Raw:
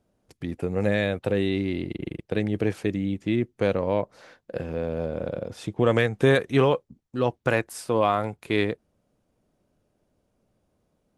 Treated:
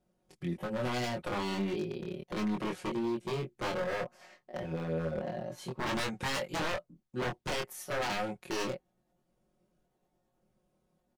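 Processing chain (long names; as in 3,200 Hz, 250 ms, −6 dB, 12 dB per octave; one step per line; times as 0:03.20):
pitch shifter gated in a rhythm +3 semitones, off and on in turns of 578 ms
comb filter 5.5 ms, depth 84%
wave folding −21 dBFS
chorus effect 0.32 Hz, depth 2.5 ms
level −4 dB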